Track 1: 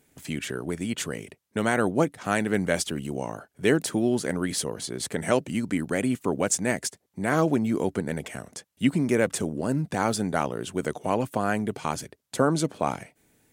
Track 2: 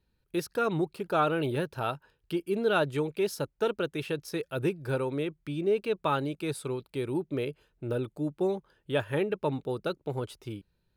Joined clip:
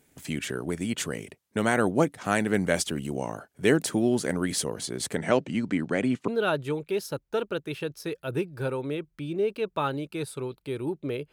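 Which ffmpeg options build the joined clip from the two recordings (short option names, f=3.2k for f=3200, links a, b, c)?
-filter_complex "[0:a]asettb=1/sr,asplit=3[a][b][c];[a]atrim=end=5.184[d];[b]atrim=start=5.18:end=6.28,asetpts=PTS-STARTPTS,afade=t=in:d=0.004:c=qsin,afade=t=out:st=1.096:d=0.004:c=qsin,highpass=100,lowpass=4.8k[e];[c]atrim=start=6.276[f];[d][e]acrossfade=d=0.004:c1=hsin:c2=qsin[g];[g][f]acrossfade=d=0.004:c1=qsin:c2=hsin,apad=whole_dur=11.32,atrim=end=11.32,atrim=end=6.282[h];[1:a]atrim=start=2.558:end=7.6[i];[h][i]acrossfade=d=0.004:c1=hsin:c2=hsin"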